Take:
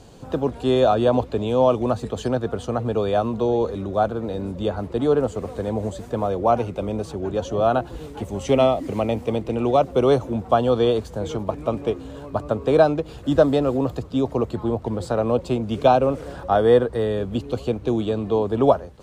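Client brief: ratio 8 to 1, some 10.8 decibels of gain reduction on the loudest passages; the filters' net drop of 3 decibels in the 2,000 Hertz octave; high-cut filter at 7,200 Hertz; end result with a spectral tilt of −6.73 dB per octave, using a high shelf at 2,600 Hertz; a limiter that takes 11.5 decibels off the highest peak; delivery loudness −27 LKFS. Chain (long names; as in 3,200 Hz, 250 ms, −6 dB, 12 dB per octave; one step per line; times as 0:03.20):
low-pass filter 7,200 Hz
parametric band 2,000 Hz −7.5 dB
high-shelf EQ 2,600 Hz +6.5 dB
downward compressor 8 to 1, threshold −21 dBFS
level +5 dB
brickwall limiter −18 dBFS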